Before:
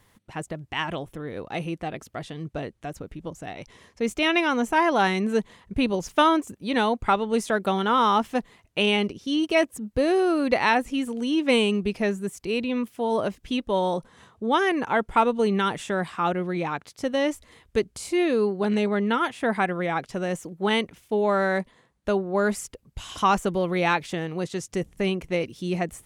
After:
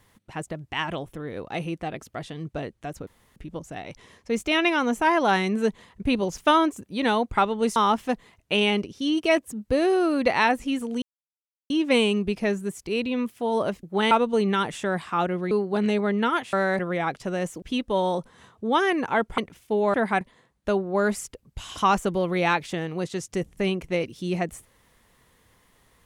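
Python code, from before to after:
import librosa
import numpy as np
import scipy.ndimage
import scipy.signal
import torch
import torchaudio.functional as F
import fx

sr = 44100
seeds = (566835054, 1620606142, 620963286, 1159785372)

y = fx.edit(x, sr, fx.insert_room_tone(at_s=3.07, length_s=0.29),
    fx.cut(start_s=7.47, length_s=0.55),
    fx.insert_silence(at_s=11.28, length_s=0.68),
    fx.swap(start_s=13.41, length_s=1.76, other_s=20.51, other_length_s=0.28),
    fx.cut(start_s=16.57, length_s=1.82),
    fx.swap(start_s=19.41, length_s=0.27, other_s=21.35, other_length_s=0.26), tone=tone)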